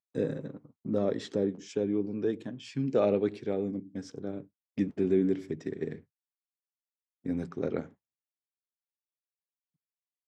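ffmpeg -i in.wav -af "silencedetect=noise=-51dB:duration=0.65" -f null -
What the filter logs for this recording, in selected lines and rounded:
silence_start: 6.01
silence_end: 7.25 | silence_duration: 1.24
silence_start: 7.92
silence_end: 10.28 | silence_duration: 2.36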